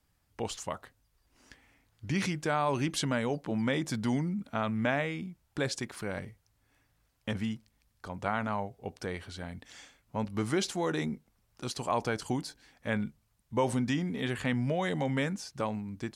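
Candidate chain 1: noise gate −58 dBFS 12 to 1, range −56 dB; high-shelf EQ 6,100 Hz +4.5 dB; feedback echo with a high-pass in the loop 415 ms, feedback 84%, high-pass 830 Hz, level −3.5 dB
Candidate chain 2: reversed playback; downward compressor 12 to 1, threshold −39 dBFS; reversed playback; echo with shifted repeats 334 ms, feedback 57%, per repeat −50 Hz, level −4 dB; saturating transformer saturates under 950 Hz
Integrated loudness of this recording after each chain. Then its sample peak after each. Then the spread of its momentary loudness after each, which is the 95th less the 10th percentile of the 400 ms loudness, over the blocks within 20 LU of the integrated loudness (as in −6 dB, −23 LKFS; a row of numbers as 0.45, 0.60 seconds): −32.5, −47.5 LKFS; −14.0, −27.5 dBFS; 11, 8 LU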